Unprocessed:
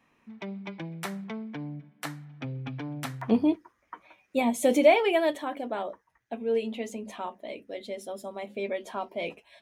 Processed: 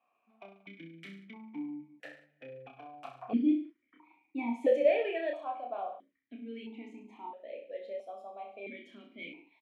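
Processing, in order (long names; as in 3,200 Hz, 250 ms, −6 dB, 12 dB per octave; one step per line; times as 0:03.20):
reverse bouncing-ball delay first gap 30 ms, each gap 1.1×, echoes 5
formant filter that steps through the vowels 1.5 Hz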